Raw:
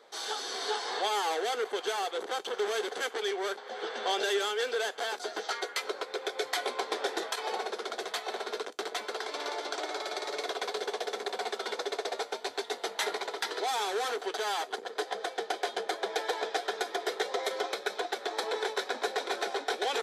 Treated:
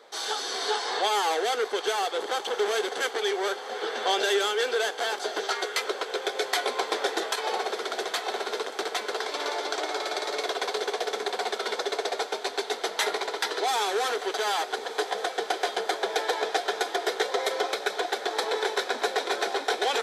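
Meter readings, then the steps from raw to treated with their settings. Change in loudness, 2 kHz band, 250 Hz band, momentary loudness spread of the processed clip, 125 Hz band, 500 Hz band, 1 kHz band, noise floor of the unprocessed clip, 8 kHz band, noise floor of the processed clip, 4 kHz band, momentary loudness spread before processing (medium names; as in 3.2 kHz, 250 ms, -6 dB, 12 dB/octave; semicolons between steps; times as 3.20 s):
+5.0 dB, +5.0 dB, +4.5 dB, 5 LU, no reading, +5.0 dB, +5.0 dB, -47 dBFS, +5.5 dB, -39 dBFS, +5.5 dB, 5 LU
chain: bass shelf 99 Hz -8.5 dB; echo that smears into a reverb 1258 ms, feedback 74%, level -14.5 dB; trim +5 dB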